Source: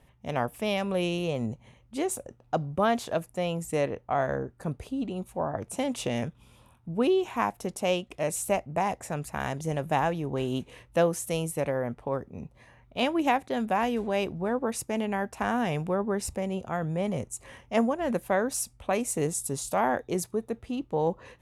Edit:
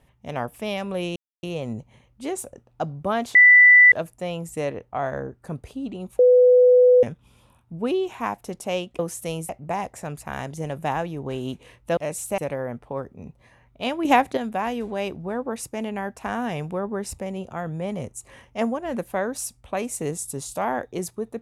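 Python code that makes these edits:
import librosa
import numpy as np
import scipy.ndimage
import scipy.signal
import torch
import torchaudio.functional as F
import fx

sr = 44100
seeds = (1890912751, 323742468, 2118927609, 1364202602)

y = fx.edit(x, sr, fx.insert_silence(at_s=1.16, length_s=0.27),
    fx.insert_tone(at_s=3.08, length_s=0.57, hz=1980.0, db=-8.0),
    fx.bleep(start_s=5.35, length_s=0.84, hz=498.0, db=-10.5),
    fx.swap(start_s=8.15, length_s=0.41, other_s=11.04, other_length_s=0.5),
    fx.clip_gain(start_s=13.21, length_s=0.32, db=7.5), tone=tone)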